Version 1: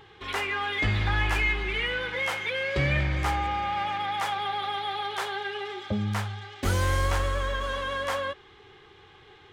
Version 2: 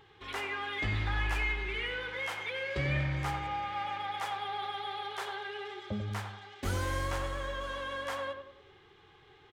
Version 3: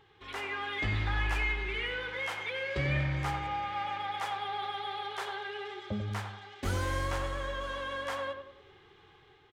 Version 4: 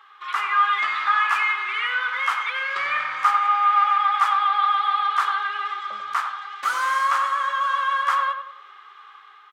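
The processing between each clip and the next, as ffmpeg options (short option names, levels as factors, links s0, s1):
-filter_complex "[0:a]asplit=2[s0][s1];[s1]adelay=94,lowpass=f=1600:p=1,volume=0.501,asplit=2[s2][s3];[s3]adelay=94,lowpass=f=1600:p=1,volume=0.44,asplit=2[s4][s5];[s5]adelay=94,lowpass=f=1600:p=1,volume=0.44,asplit=2[s6][s7];[s7]adelay=94,lowpass=f=1600:p=1,volume=0.44,asplit=2[s8][s9];[s9]adelay=94,lowpass=f=1600:p=1,volume=0.44[s10];[s0][s2][s4][s6][s8][s10]amix=inputs=6:normalize=0,volume=0.422"
-af "highshelf=f=10000:g=-4.5,dynaudnorm=f=120:g=7:m=1.58,volume=0.708"
-af "highpass=f=1200:t=q:w=7.9,volume=2.11"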